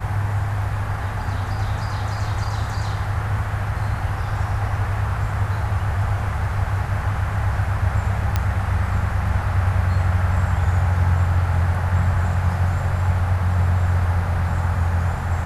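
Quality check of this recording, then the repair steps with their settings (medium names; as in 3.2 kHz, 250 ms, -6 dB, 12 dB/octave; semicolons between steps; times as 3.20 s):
8.36 s: pop -7 dBFS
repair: de-click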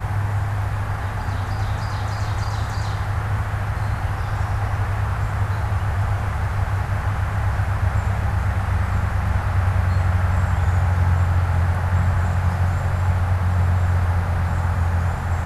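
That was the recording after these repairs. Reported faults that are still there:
nothing left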